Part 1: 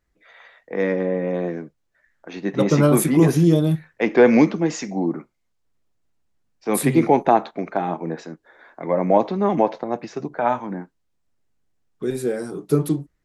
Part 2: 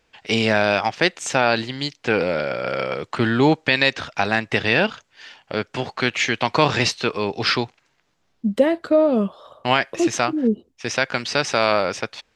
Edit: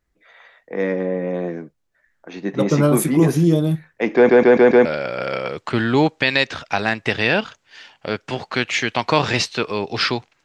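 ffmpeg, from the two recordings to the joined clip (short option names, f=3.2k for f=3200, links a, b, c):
-filter_complex "[0:a]apad=whole_dur=10.44,atrim=end=10.44,asplit=5[a][b][c][d][e];[a]atrim=end=4.292[f];[b]atrim=start=4.148:end=4.292[g];[c]atrim=start=4.148:end=4.292[h];[d]atrim=start=4.148:end=4.292[i];[e]atrim=start=4.148:end=4.292[j];[1:a]atrim=start=2.308:end=7.9[k];[f][g]acrossfade=d=0.004:c1=hsin:c2=hsin[l];[l][h]acrossfade=d=0.004:c1=hsin:c2=hsin[m];[m][i]acrossfade=d=0.004:c1=hsin:c2=hsin[n];[n][j]acrossfade=d=0.004:c1=hsin:c2=hsin[o];[o][k]acrossfade=d=0.004:c1=hsin:c2=hsin"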